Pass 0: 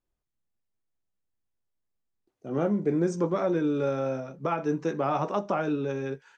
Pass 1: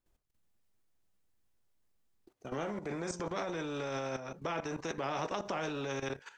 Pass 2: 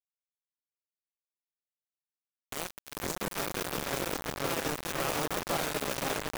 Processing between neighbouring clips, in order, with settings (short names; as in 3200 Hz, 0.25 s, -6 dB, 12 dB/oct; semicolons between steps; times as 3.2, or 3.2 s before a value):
dynamic EQ 590 Hz, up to +7 dB, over -40 dBFS, Q 0.76; level quantiser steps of 14 dB; spectral compressor 2:1; gain -4.5 dB
modulation noise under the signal 13 dB; repeats that get brighter 0.513 s, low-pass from 750 Hz, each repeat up 1 oct, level 0 dB; bit-crush 5-bit